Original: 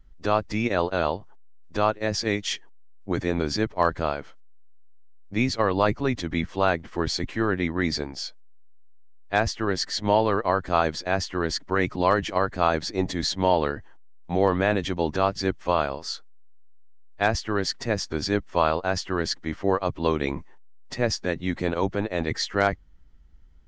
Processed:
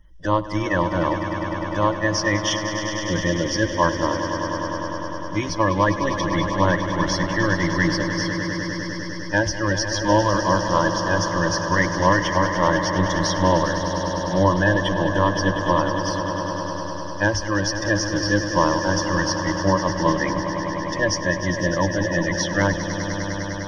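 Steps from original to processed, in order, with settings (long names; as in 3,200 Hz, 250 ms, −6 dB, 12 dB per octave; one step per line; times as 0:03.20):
spectral magnitudes quantised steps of 30 dB
EQ curve with evenly spaced ripples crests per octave 1.2, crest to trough 16 dB
echo that builds up and dies away 101 ms, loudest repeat 5, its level −11.5 dB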